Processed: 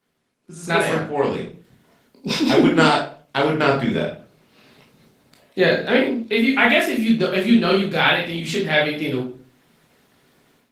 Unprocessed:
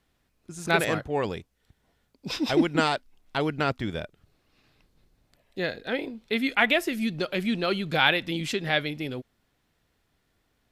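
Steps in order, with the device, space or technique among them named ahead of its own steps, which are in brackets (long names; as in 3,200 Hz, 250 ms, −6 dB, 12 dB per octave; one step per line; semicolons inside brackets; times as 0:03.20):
far-field microphone of a smart speaker (convolution reverb RT60 0.40 s, pre-delay 15 ms, DRR −2 dB; high-pass filter 130 Hz 24 dB per octave; automatic gain control gain up to 14 dB; level −1 dB; Opus 20 kbit/s 48,000 Hz)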